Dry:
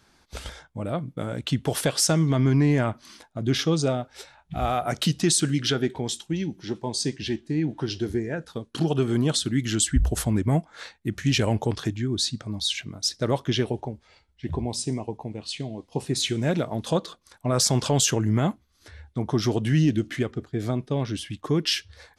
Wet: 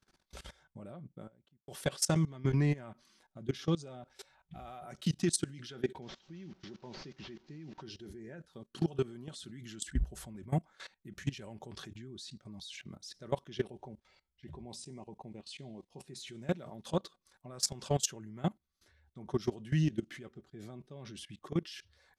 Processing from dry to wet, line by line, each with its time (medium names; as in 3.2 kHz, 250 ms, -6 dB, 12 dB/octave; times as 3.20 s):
0.63–1.68 s: studio fade out
6.02–7.82 s: one-bit delta coder 32 kbps, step -40 dBFS
whole clip: comb 5.3 ms, depth 40%; level held to a coarse grid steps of 20 dB; trim -7 dB